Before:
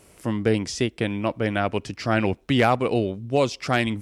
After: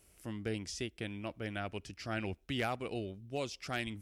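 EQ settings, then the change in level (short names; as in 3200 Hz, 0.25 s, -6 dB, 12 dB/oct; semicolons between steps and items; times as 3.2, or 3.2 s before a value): graphic EQ 125/250/500/1000/2000/4000/8000 Hz -10/-8/-9/-11/-5/-5/-5 dB; -5.0 dB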